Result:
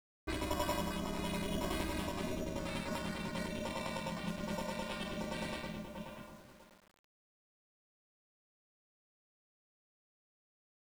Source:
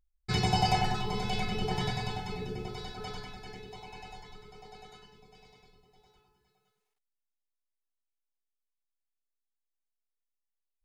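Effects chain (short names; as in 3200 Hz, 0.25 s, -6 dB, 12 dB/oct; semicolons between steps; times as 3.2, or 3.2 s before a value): Doppler pass-by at 2.69, 17 m/s, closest 19 m; recorder AGC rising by 29 dB/s; ring modulator 190 Hz; sample-and-hold 7×; low-pass opened by the level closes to 1200 Hz, open at -33 dBFS; requantised 10-bit, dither none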